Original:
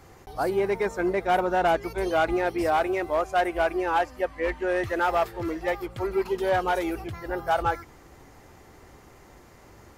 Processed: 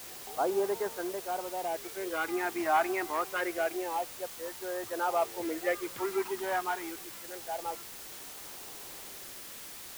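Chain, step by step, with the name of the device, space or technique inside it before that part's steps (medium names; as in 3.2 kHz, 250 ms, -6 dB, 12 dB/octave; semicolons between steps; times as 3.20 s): shortwave radio (band-pass 350–2600 Hz; tremolo 0.34 Hz, depth 74%; LFO notch sine 0.27 Hz 490–2400 Hz; white noise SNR 11 dB)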